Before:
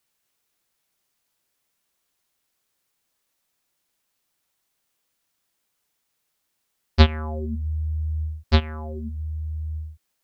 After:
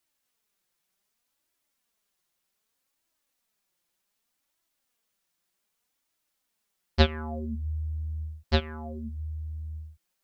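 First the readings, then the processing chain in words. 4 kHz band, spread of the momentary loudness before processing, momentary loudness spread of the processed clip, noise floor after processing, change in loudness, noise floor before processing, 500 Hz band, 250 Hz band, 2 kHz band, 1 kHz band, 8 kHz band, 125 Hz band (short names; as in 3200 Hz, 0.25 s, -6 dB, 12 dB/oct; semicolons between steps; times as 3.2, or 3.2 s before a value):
-3.5 dB, 14 LU, 14 LU, -80 dBFS, -6.0 dB, -76 dBFS, -2.0 dB, -5.0 dB, -3.0 dB, -4.5 dB, n/a, -7.0 dB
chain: flange 0.65 Hz, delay 2.9 ms, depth 3 ms, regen +36%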